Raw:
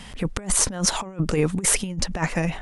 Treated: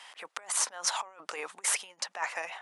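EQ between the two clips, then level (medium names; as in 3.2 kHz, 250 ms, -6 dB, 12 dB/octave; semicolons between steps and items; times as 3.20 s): ladder high-pass 650 Hz, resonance 25%; treble shelf 10 kHz -6.5 dB; 0.0 dB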